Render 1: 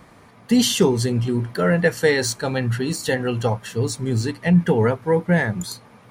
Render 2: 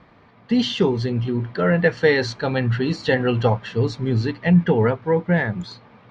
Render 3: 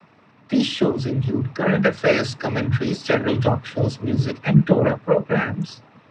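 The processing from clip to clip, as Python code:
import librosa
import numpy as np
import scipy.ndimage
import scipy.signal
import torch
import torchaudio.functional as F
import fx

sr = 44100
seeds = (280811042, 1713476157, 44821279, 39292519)

y1 = scipy.signal.sosfilt(scipy.signal.butter(4, 4200.0, 'lowpass', fs=sr, output='sos'), x)
y1 = fx.rider(y1, sr, range_db=10, speed_s=2.0)
y2 = fx.noise_vocoder(y1, sr, seeds[0], bands=12)
y2 = fx.doppler_dist(y2, sr, depth_ms=0.15)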